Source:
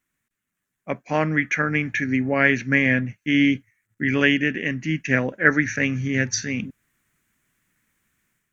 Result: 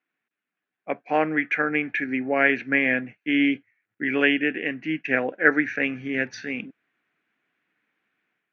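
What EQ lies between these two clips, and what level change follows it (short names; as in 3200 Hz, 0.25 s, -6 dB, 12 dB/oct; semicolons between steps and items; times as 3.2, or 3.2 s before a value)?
speaker cabinet 250–3900 Hz, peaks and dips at 310 Hz +5 dB, 460 Hz +6 dB, 740 Hz +9 dB, 1500 Hz +4 dB, 2500 Hz +5 dB; -4.5 dB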